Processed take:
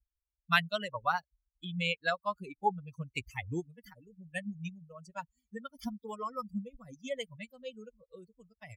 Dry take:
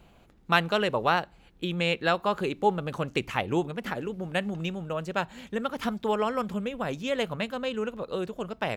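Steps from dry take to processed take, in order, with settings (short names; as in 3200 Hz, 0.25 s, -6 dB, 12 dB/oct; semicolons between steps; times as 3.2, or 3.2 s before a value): per-bin expansion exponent 3; bell 400 Hz -9 dB 1.3 oct; gain +1.5 dB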